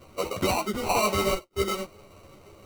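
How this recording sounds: aliases and images of a low sample rate 1700 Hz, jitter 0%; a shimmering, thickened sound

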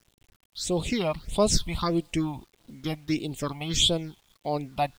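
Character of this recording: phasing stages 6, 1.6 Hz, lowest notch 400–1800 Hz; a quantiser's noise floor 10-bit, dither none

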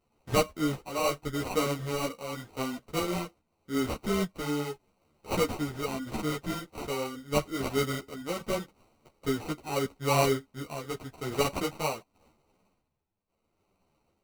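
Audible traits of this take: aliases and images of a low sample rate 1700 Hz, jitter 0%; tremolo triangle 0.81 Hz, depth 65%; a shimmering, thickened sound

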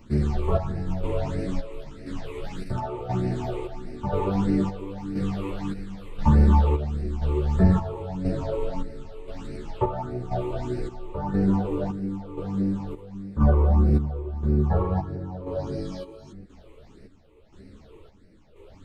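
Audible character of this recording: phasing stages 8, 1.6 Hz, lowest notch 200–1000 Hz; chopped level 0.97 Hz, depth 60%, duty 55%; a shimmering, thickened sound

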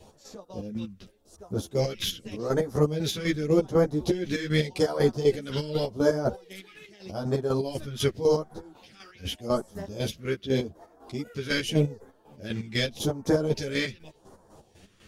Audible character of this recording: phasing stages 2, 0.85 Hz, lowest notch 730–2600 Hz; chopped level 4 Hz, depth 65%, duty 40%; a shimmering, thickened sound

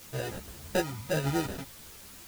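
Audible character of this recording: aliases and images of a low sample rate 1100 Hz, jitter 0%; tremolo saw up 10 Hz, depth 30%; a quantiser's noise floor 8-bit, dither triangular; a shimmering, thickened sound

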